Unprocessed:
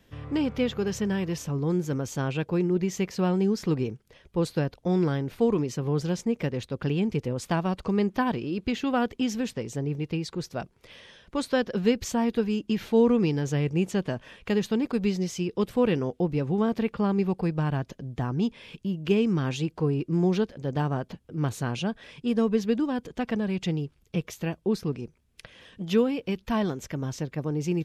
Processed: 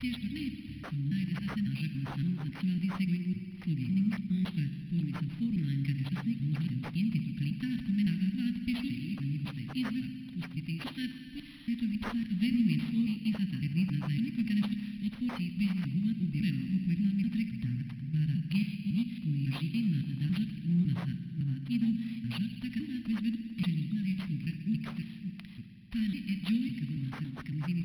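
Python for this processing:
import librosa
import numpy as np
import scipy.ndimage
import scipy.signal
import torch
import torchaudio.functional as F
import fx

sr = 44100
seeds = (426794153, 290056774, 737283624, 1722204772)

y = fx.block_reorder(x, sr, ms=278.0, group=3)
y = scipy.signal.sosfilt(scipy.signal.cheby2(4, 40, [390.0, 1300.0], 'bandstop', fs=sr, output='sos'), y)
y = fx.low_shelf(y, sr, hz=130.0, db=-5.0)
y = fx.rev_spring(y, sr, rt60_s=2.7, pass_ms=(58,), chirp_ms=50, drr_db=5.5)
y = np.interp(np.arange(len(y)), np.arange(len(y))[::6], y[::6])
y = y * librosa.db_to_amplitude(-1.5)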